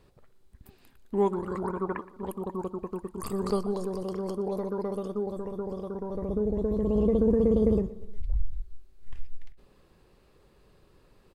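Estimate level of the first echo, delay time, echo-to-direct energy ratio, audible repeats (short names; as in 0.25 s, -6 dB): -18.5 dB, 0.12 s, -17.0 dB, 3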